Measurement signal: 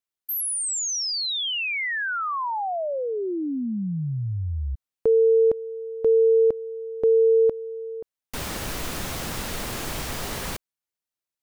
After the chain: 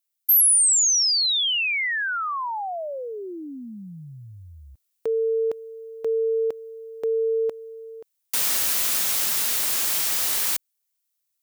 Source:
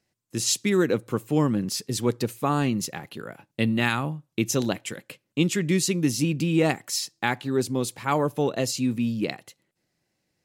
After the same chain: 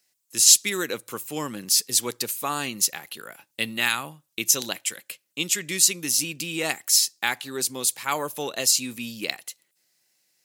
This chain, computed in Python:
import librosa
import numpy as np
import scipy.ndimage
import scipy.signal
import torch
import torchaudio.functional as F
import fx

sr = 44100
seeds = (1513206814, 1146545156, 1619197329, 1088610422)

p1 = fx.tilt_eq(x, sr, slope=4.5)
p2 = fx.rider(p1, sr, range_db=5, speed_s=2.0)
p3 = p1 + (p2 * librosa.db_to_amplitude(-1.0))
y = p3 * librosa.db_to_amplitude(-8.5)